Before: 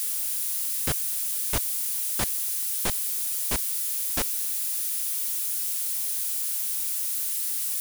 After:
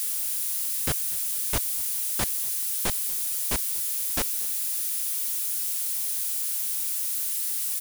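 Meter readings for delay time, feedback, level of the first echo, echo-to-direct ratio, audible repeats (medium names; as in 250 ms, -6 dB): 240 ms, 31%, -23.5 dB, -23.0 dB, 2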